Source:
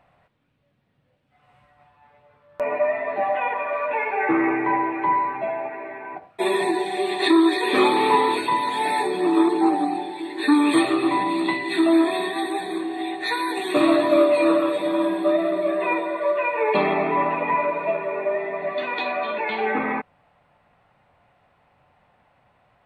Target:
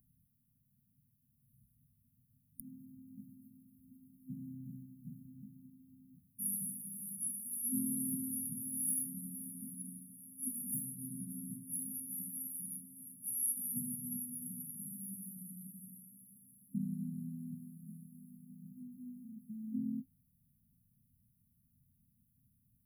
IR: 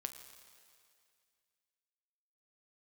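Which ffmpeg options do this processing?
-af "aexciter=amount=7.2:drive=7.7:freq=7800,afftfilt=real='re*(1-between(b*sr/4096,260,9600))':imag='im*(1-between(b*sr/4096,260,9600))':win_size=4096:overlap=0.75,volume=0.531"

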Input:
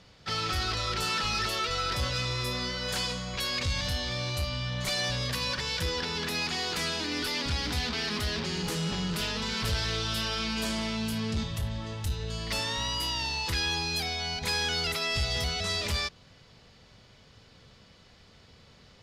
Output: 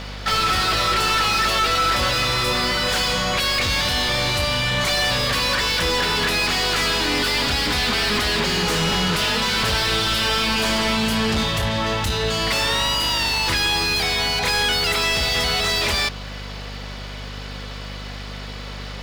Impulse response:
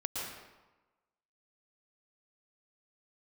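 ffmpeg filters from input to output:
-filter_complex "[0:a]asplit=2[s0][s1];[s1]highpass=f=720:p=1,volume=20,asoftclip=type=tanh:threshold=0.126[s2];[s0][s2]amix=inputs=2:normalize=0,lowpass=f=3000:p=1,volume=0.501,aeval=exprs='val(0)+0.0126*(sin(2*PI*50*n/s)+sin(2*PI*2*50*n/s)/2+sin(2*PI*3*50*n/s)/3+sin(2*PI*4*50*n/s)/4+sin(2*PI*5*50*n/s)/5)':c=same,aeval=exprs='sgn(val(0))*max(abs(val(0))-0.00211,0)':c=same,volume=2.11"

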